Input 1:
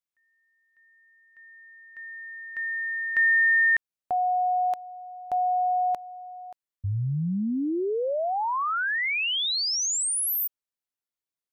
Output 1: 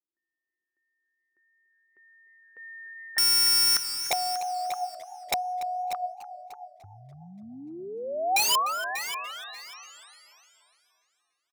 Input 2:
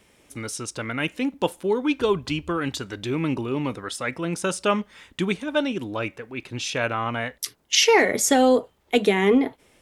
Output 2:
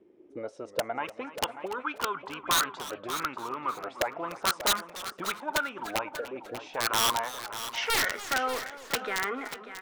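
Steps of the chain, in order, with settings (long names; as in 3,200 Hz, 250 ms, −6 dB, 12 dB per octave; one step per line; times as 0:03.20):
low-pass filter 8,400 Hz 12 dB per octave
in parallel at −0.5 dB: brickwall limiter −17.5 dBFS
on the sum: envelope filter 340–1,400 Hz, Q 8.3, up, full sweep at −15.5 dBFS
wrap-around overflow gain 25.5 dB
on a send: repeating echo 590 ms, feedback 17%, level −12 dB
on the sum: feedback echo with a swinging delay time 294 ms, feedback 52%, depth 182 cents, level −16 dB
level +7 dB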